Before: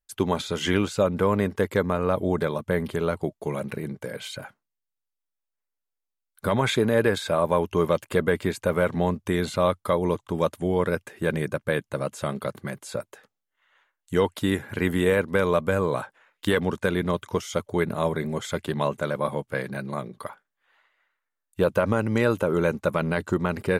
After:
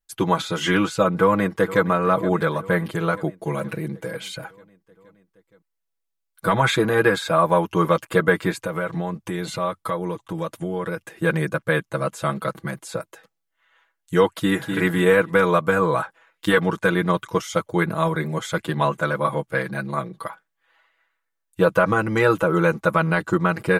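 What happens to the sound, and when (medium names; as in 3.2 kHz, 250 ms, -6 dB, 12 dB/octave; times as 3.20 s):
1.14–1.85 s: echo throw 470 ms, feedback 70%, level -15.5 dB
8.51–11.08 s: compression 3:1, threshold -27 dBFS
14.32–14.75 s: echo throw 250 ms, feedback 25%, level -6 dB
whole clip: comb 6.1 ms, depth 92%; dynamic bell 1.3 kHz, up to +7 dB, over -37 dBFS, Q 1.3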